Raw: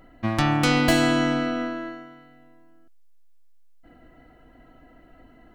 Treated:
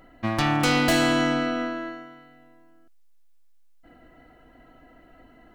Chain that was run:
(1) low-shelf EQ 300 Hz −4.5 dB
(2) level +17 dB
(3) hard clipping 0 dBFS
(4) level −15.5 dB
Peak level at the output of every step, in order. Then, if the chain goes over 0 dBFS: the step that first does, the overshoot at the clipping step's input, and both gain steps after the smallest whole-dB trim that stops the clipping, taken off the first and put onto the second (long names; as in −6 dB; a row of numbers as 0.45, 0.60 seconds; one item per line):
−7.5, +9.5, 0.0, −15.5 dBFS
step 2, 9.5 dB
step 2 +7 dB, step 4 −5.5 dB